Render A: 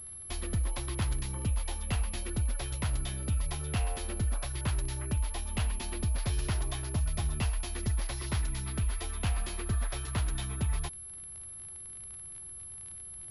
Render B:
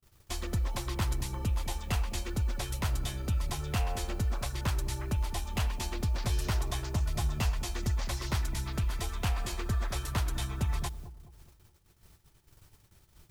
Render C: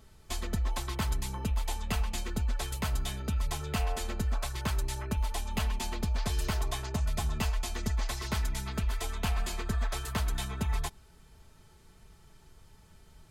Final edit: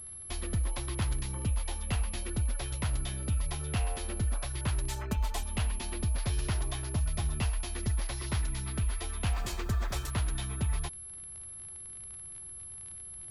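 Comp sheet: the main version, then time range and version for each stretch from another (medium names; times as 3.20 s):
A
4.89–5.43 s: from C
9.33–10.10 s: from B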